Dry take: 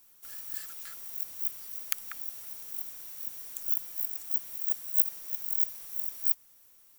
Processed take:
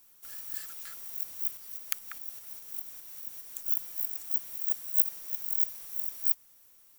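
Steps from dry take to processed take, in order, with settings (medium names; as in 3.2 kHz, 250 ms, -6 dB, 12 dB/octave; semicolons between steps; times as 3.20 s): 1.57–3.66 s: tremolo saw up 4.9 Hz, depth 45%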